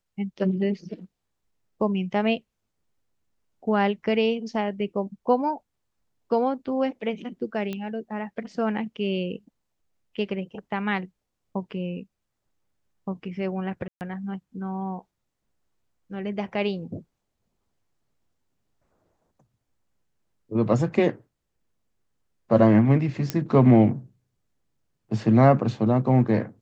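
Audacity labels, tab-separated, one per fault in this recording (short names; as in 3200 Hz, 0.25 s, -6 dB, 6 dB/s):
7.730000	7.730000	pop -19 dBFS
13.880000	14.010000	gap 0.129 s
23.300000	23.300000	pop -10 dBFS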